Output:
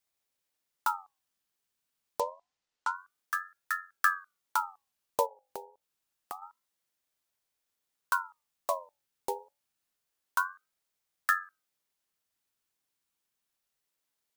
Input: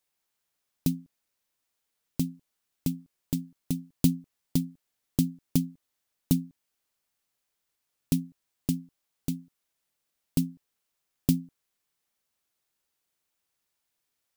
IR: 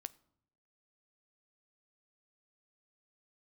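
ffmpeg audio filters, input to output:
-filter_complex "[0:a]asettb=1/sr,asplit=3[a][b][c];[a]atrim=end=2.204[d];[b]atrim=start=2.2:end=2.96,asetpts=PTS-STARTPTS,afade=t=in:d=0.004:c=qsin,afade=t=out:st=0.756:d=0.004:c=qsin,lowpass=f=6.6k:w=0.5412,lowpass=f=6.6k:w=1.3066[e];[c]atrim=start=2.956[f];[d][e]acrossfade=d=0.004:c1=hsin:c2=qsin[g];[g][f]acrossfade=d=0.004:c1=qsin:c2=hsin,asplit=3[h][i][j];[h]afade=t=out:st=5.25:d=0.02[k];[i]acompressor=threshold=-36dB:ratio=8,afade=t=in:st=5.25:d=0.02,afade=t=out:st=6.41:d=0.02[l];[j]afade=t=in:st=6.41:d=0.02[m];[k][l][m]amix=inputs=3:normalize=0,bandreject=f=1.3k:w=6.9,acrossover=split=310[n][o];[o]acompressor=threshold=-27dB:ratio=6[p];[n][p]amix=inputs=2:normalize=0,bandreject=f=50:t=h:w=6,bandreject=f=100:t=h:w=6,bandreject=f=150:t=h:w=6,bandreject=f=200:t=h:w=6,aeval=exprs='val(0)*sin(2*PI*1100*n/s+1100*0.4/0.27*sin(2*PI*0.27*n/s))':c=same"

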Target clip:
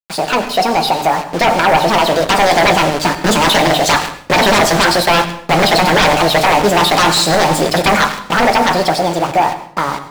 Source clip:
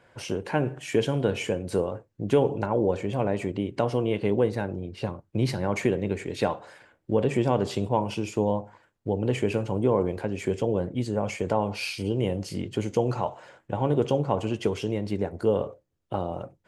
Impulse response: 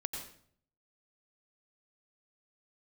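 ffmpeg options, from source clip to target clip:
-filter_complex "[0:a]equalizer=f=130:t=o:w=2.4:g=-8.5,bandreject=f=91.07:t=h:w=4,bandreject=f=182.14:t=h:w=4,bandreject=f=273.21:t=h:w=4,bandreject=f=364.28:t=h:w=4,bandreject=f=455.35:t=h:w=4,bandreject=f=546.42:t=h:w=4,bandreject=f=637.49:t=h:w=4,bandreject=f=728.56:t=h:w=4,bandreject=f=819.63:t=h:w=4,acrusher=bits=6:mix=0:aa=0.000001,dynaudnorm=f=210:g=31:m=9dB,aeval=exprs='0.794*sin(PI/2*7.94*val(0)/0.794)':c=same,equalizer=f=8.8k:t=o:w=1.5:g=-9.5,asetrate=72765,aresample=44100,flanger=delay=6.4:depth=1.5:regen=-74:speed=0.31:shape=triangular,asplit=2[a][b];[1:a]atrim=start_sample=2205[c];[b][c]afir=irnorm=-1:irlink=0,volume=-5dB[d];[a][d]amix=inputs=2:normalize=0,volume=-3.5dB"

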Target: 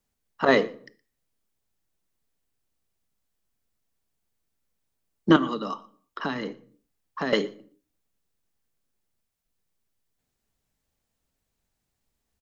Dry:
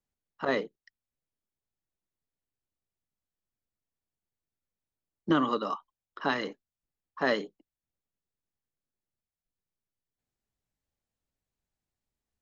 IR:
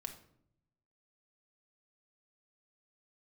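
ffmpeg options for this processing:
-filter_complex "[0:a]asettb=1/sr,asplit=3[a][b][c];[a]atrim=end=5.364[d];[b]atrim=start=5.36:end=7.33,asetpts=PTS-STARTPTS,afade=t=in:d=0.004:c=qsin,afade=t=out:st=1.966:d=0.004:c=qsin,acrossover=split=280|2500[e][f][g];[e]acompressor=threshold=-42dB:ratio=4[h];[f]acompressor=threshold=-41dB:ratio=4[i];[g]acompressor=threshold=-54dB:ratio=4[j];[h][i][j]amix=inputs=3:normalize=0[k];[c]atrim=start=7.326[l];[d][k]acrossfade=d=0.004:c1=hsin:c2=qsin[m];[m][l]acrossfade=d=0.004:c1=qsin:c2=hsin,aecho=1:1:118:0.0668,asplit=2[n][o];[1:a]atrim=start_sample=2205,afade=t=out:st=0.4:d=0.01,atrim=end_sample=18081,highshelf=f=4.6k:g=7[p];[o][p]afir=irnorm=-1:irlink=0,volume=-6dB[q];[n][q]amix=inputs=2:normalize=0,volume=6.5dB"

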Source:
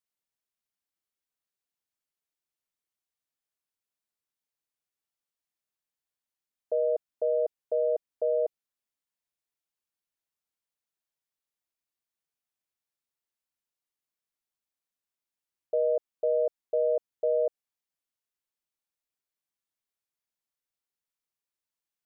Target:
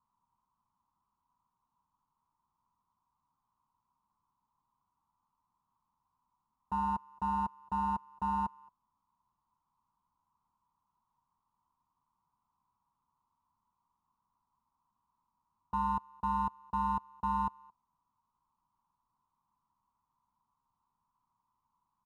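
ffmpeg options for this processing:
-filter_complex "[0:a]aresample=16000,aeval=exprs='0.119*sin(PI/2*5.01*val(0)/0.119)':c=same,aresample=44100,asplit=2[a][b];[b]adelay=220,highpass=300,lowpass=3.4k,asoftclip=type=hard:threshold=-28.5dB,volume=-29dB[c];[a][c]amix=inputs=2:normalize=0,volume=31dB,asoftclip=hard,volume=-31dB,firequalizer=gain_entry='entry(220,0);entry(330,-12);entry(570,-23);entry(970,13);entry(1700,-28)':delay=0.05:min_phase=1"

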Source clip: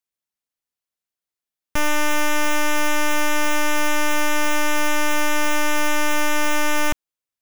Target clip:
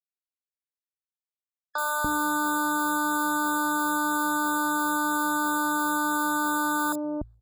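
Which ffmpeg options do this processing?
-filter_complex "[0:a]aeval=exprs='sgn(val(0))*max(abs(val(0))-0.00596,0)':c=same,bandreject=f=57:t=h:w=4,bandreject=f=114:t=h:w=4,acompressor=mode=upward:threshold=-26dB:ratio=2.5,acrusher=bits=11:mix=0:aa=0.000001,highpass=42,acrossover=split=630|4900[a][b][c];[c]adelay=30[d];[a]adelay=290[e];[e][b][d]amix=inputs=3:normalize=0,afftfilt=real='re*eq(mod(floor(b*sr/1024/1700),2),0)':imag='im*eq(mod(floor(b*sr/1024/1700),2),0)':win_size=1024:overlap=0.75"

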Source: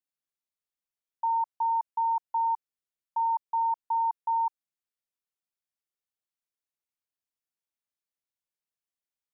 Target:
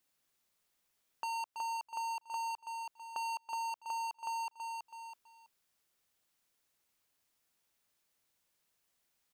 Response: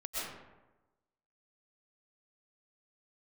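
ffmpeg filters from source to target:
-af "asoftclip=type=hard:threshold=-38.5dB,aecho=1:1:327|654|981:0.316|0.0727|0.0167,acompressor=threshold=-58dB:ratio=2.5,volume=13.5dB"

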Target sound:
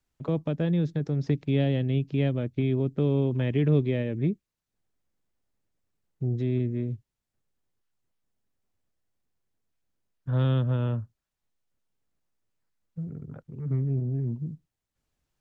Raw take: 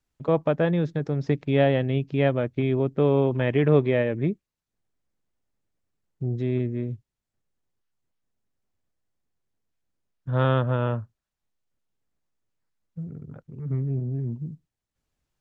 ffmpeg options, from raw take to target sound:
-filter_complex "[0:a]acrossover=split=350|3000[a][b][c];[b]acompressor=threshold=-41dB:ratio=3[d];[a][d][c]amix=inputs=3:normalize=0"

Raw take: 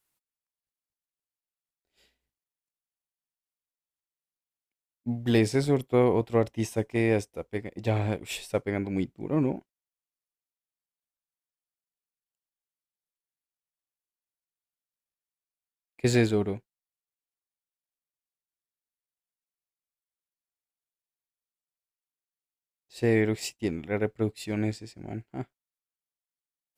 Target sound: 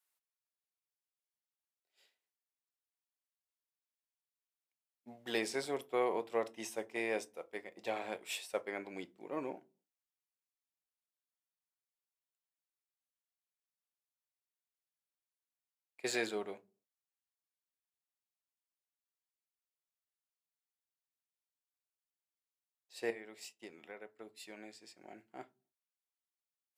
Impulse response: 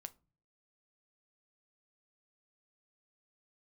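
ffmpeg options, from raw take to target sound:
-filter_complex "[0:a]highpass=550,asettb=1/sr,asplit=3[a][b][c];[a]atrim=end=23.104[d];[b]atrim=start=23.1:end=25.19,asetpts=PTS-STARTPTS,afade=t=in:d=0.004:c=qsin,afade=t=out:st=2.086:d=0.004:c=qsin,acompressor=threshold=-43dB:ratio=4[e];[c]atrim=start=25.186[f];[d][e]acrossfade=d=0.004:c1=hsin:c2=qsin[g];[g][f]acrossfade=d=0.004:c1=qsin:c2=hsin[h];[1:a]atrim=start_sample=2205,asetrate=57330,aresample=44100[i];[h][i]afir=irnorm=-1:irlink=0,volume=2.5dB"

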